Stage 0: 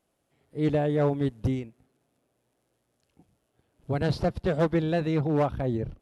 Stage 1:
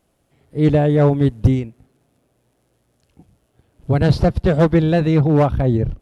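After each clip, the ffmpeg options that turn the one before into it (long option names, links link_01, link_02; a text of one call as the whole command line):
ffmpeg -i in.wav -af "lowshelf=frequency=150:gain=9,volume=8dB" out.wav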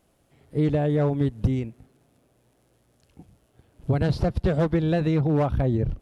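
ffmpeg -i in.wav -af "acompressor=threshold=-19dB:ratio=6" out.wav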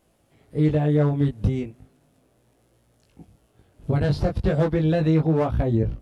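ffmpeg -i in.wav -af "flanger=delay=18:depth=2.5:speed=0.35,volume=4dB" out.wav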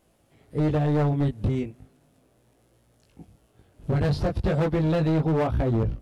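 ffmpeg -i in.wav -af "asoftclip=type=hard:threshold=-19dB" out.wav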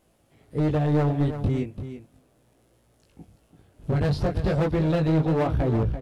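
ffmpeg -i in.wav -af "aecho=1:1:338:0.299" out.wav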